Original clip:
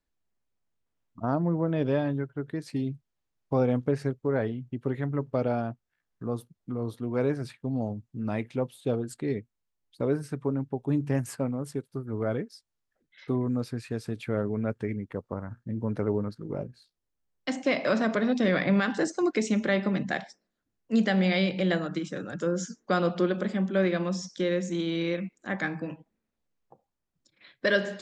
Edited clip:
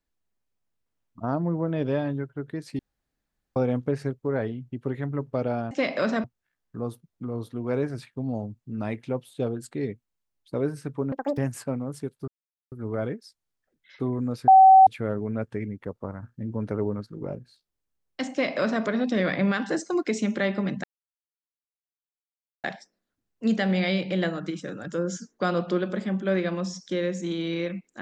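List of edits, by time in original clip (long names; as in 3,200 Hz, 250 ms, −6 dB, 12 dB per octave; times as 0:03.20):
0:02.79–0:03.56: fill with room tone
0:10.59–0:11.10: play speed 198%
0:12.00: splice in silence 0.44 s
0:13.76–0:14.15: beep over 764 Hz −9 dBFS
0:17.59–0:18.12: duplicate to 0:05.71
0:20.12: splice in silence 1.80 s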